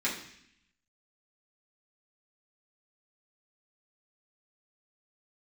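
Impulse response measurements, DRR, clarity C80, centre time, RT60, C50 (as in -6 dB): -8.0 dB, 10.0 dB, 29 ms, 0.70 s, 6.5 dB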